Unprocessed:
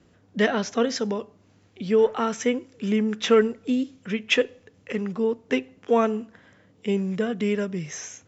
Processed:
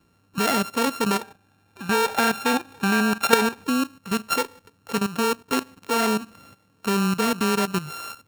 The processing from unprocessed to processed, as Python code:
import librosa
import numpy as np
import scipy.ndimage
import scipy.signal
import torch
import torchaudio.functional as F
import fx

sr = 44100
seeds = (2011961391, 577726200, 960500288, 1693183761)

y = np.r_[np.sort(x[:len(x) // 32 * 32].reshape(-1, 32), axis=1).ravel(), x[len(x) // 32 * 32:]]
y = fx.level_steps(y, sr, step_db=14)
y = fx.small_body(y, sr, hz=(800.0, 1600.0, 2400.0, 3600.0), ring_ms=40, db=13, at=(1.21, 3.64))
y = y * 10.0 ** (7.0 / 20.0)